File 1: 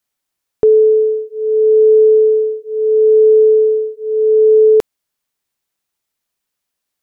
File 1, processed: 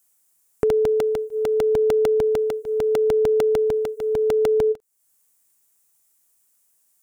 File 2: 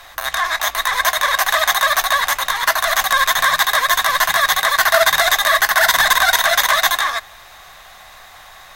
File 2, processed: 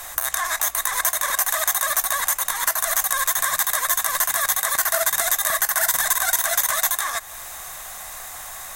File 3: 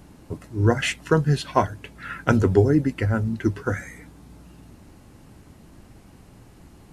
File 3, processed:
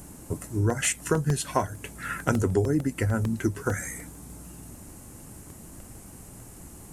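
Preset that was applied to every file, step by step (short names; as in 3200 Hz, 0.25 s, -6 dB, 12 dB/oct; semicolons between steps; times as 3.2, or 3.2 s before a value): resonant high shelf 5800 Hz +12 dB, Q 1.5; compressor 2.5:1, threshold -26 dBFS; crackling interface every 0.15 s, samples 64, repeat, from 0.7; ending taper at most 560 dB/s; gain +2 dB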